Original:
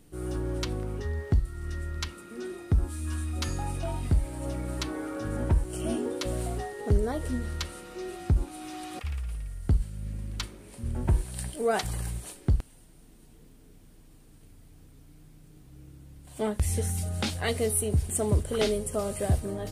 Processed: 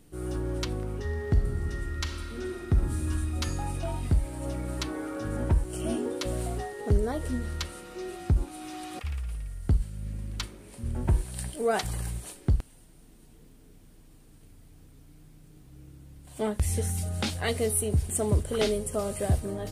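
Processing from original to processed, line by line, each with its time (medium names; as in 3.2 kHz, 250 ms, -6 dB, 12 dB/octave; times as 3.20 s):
1.01–2.98 s: reverb throw, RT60 2.6 s, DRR 3.5 dB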